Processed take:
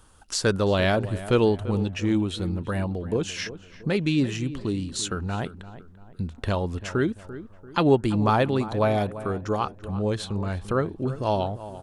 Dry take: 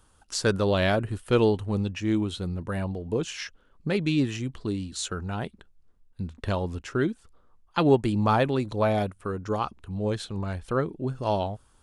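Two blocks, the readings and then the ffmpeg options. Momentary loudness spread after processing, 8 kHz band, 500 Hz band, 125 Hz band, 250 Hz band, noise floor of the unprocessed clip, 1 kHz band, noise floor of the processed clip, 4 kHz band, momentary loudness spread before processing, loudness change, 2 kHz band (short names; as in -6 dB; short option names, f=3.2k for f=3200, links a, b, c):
11 LU, +3.0 dB, +1.5 dB, +2.0 dB, +2.0 dB, -61 dBFS, +1.5 dB, -49 dBFS, +2.0 dB, 11 LU, +1.5 dB, +1.5 dB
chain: -filter_complex "[0:a]asplit=2[a][b];[b]acompressor=threshold=-36dB:ratio=6,volume=-1dB[c];[a][c]amix=inputs=2:normalize=0,asplit=2[d][e];[e]adelay=341,lowpass=f=1.8k:p=1,volume=-14dB,asplit=2[f][g];[g]adelay=341,lowpass=f=1.8k:p=1,volume=0.42,asplit=2[h][i];[i]adelay=341,lowpass=f=1.8k:p=1,volume=0.42,asplit=2[j][k];[k]adelay=341,lowpass=f=1.8k:p=1,volume=0.42[l];[d][f][h][j][l]amix=inputs=5:normalize=0"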